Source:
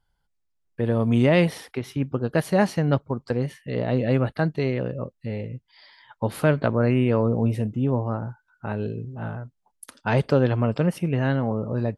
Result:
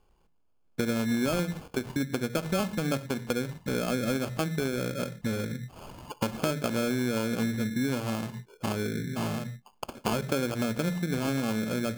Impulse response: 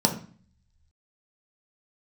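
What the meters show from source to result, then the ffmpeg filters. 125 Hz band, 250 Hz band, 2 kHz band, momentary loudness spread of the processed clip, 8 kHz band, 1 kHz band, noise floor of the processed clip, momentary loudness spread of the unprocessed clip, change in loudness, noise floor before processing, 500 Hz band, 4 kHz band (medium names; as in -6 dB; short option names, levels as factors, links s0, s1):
-10.0 dB, -4.5 dB, -3.5 dB, 8 LU, +6.5 dB, -5.0 dB, -66 dBFS, 13 LU, -6.5 dB, -74 dBFS, -7.5 dB, +2.5 dB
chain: -filter_complex "[0:a]asplit=2[s0][s1];[1:a]atrim=start_sample=2205,afade=t=out:st=0.18:d=0.01,atrim=end_sample=8379[s2];[s1][s2]afir=irnorm=-1:irlink=0,volume=0.0668[s3];[s0][s3]amix=inputs=2:normalize=0,acrusher=samples=23:mix=1:aa=0.000001,acompressor=threshold=0.0158:ratio=4,volume=2.24"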